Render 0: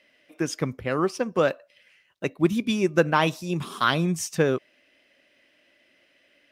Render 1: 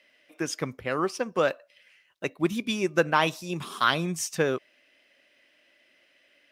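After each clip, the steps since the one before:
low-shelf EQ 380 Hz −7.5 dB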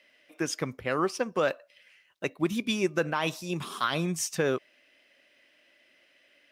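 brickwall limiter −15.5 dBFS, peak gain reduction 9 dB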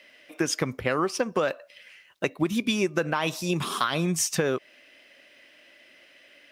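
downward compressor 6 to 1, threshold −30 dBFS, peak gain reduction 9 dB
level +8.5 dB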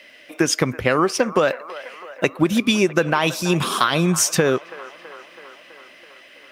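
delay with a band-pass on its return 328 ms, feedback 66%, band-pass 1,100 Hz, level −14.5 dB
level +7.5 dB

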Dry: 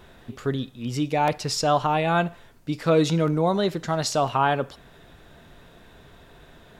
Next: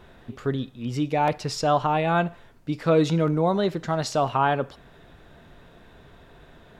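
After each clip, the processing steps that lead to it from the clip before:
high-shelf EQ 4,200 Hz −8 dB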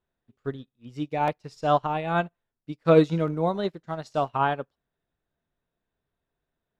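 expander for the loud parts 2.5 to 1, over −41 dBFS
level +4 dB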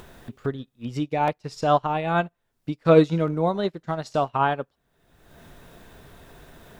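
upward compression, threshold −23 dBFS
level +2 dB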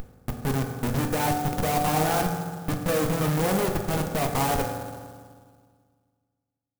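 comparator with hysteresis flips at −33 dBFS
convolution reverb RT60 1.8 s, pre-delay 3 ms, DRR 2 dB
converter with an unsteady clock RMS 0.058 ms

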